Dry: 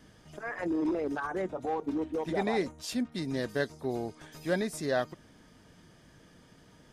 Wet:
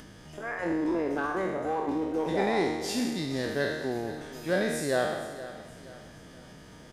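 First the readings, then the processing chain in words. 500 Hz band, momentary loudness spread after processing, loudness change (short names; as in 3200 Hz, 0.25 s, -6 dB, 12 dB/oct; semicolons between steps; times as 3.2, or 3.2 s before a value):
+3.5 dB, 19 LU, +3.0 dB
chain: spectral trails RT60 1.19 s; upward compressor, threshold -42 dBFS; on a send: feedback echo 0.472 s, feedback 42%, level -15 dB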